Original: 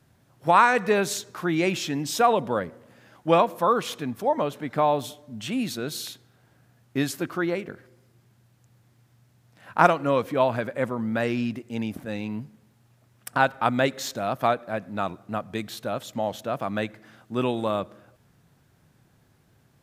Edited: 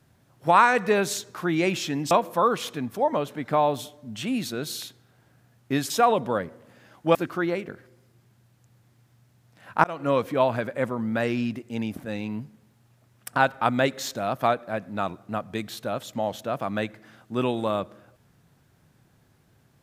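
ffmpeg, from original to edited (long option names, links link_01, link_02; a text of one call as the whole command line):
ffmpeg -i in.wav -filter_complex "[0:a]asplit=5[link_01][link_02][link_03][link_04][link_05];[link_01]atrim=end=2.112[link_06];[link_02]atrim=start=3.358:end=7.152[link_07];[link_03]atrim=start=2.108:end=3.362[link_08];[link_04]atrim=start=7.148:end=9.84,asetpts=PTS-STARTPTS,afade=type=out:start_time=2.688:duration=0.004:curve=hsin[link_09];[link_05]atrim=start=9.84,asetpts=PTS-STARTPTS,afade=type=in:duration=0.26[link_10];[link_06][link_07]acrossfade=duration=0.004:curve1=hsin:curve2=hsin[link_11];[link_11][link_08]acrossfade=duration=0.004:curve1=hsin:curve2=hsin[link_12];[link_09][link_10]concat=n=2:v=0:a=1[link_13];[link_12][link_13]acrossfade=duration=0.004:curve1=hsin:curve2=hsin" out.wav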